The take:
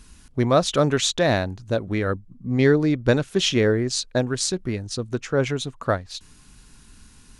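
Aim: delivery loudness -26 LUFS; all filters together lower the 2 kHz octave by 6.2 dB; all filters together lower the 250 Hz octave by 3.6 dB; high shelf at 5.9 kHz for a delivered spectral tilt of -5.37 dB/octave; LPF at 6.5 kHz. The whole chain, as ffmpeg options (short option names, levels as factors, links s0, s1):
-af "lowpass=6500,equalizer=f=250:t=o:g=-4.5,equalizer=f=2000:t=o:g=-7.5,highshelf=f=5900:g=-6,volume=0.891"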